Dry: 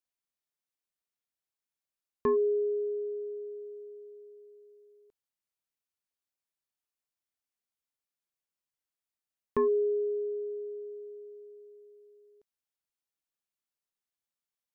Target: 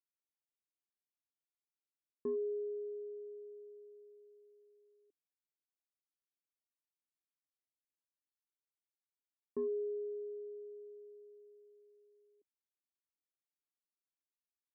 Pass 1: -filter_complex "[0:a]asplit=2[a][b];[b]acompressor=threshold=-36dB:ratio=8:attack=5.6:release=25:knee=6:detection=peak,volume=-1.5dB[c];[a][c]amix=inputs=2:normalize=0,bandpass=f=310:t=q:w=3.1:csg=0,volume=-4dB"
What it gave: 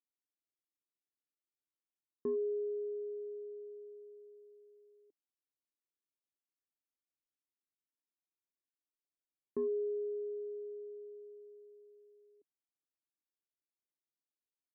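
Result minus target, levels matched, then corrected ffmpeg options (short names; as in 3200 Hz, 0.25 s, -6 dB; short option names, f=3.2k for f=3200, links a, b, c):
compressor: peak gain reduction +11.5 dB
-af "bandpass=f=310:t=q:w=3.1:csg=0,volume=-4dB"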